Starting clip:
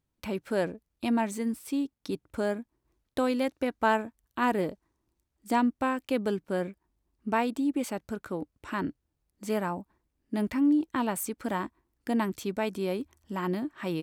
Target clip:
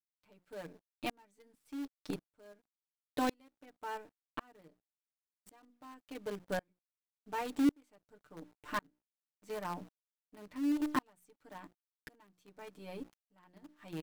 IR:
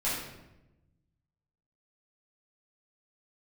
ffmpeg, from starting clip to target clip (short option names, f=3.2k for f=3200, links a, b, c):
-filter_complex "[0:a]highshelf=f=8.2k:g=-5.5,bandreject=f=60:t=h:w=6,bandreject=f=120:t=h:w=6,bandreject=f=180:t=h:w=6,bandreject=f=240:t=h:w=6,bandreject=f=300:t=h:w=6,bandreject=f=360:t=h:w=6,aecho=1:1:6.7:0.87,asplit=2[a][b];[b]acrusher=bits=5:dc=4:mix=0:aa=0.000001,volume=-4dB[c];[a][c]amix=inputs=2:normalize=0,aeval=exprs='sgn(val(0))*max(abs(val(0))-0.00282,0)':c=same,aeval=exprs='val(0)*pow(10,-37*if(lt(mod(-0.91*n/s,1),2*abs(-0.91)/1000),1-mod(-0.91*n/s,1)/(2*abs(-0.91)/1000),(mod(-0.91*n/s,1)-2*abs(-0.91)/1000)/(1-2*abs(-0.91)/1000))/20)':c=same,volume=-7dB"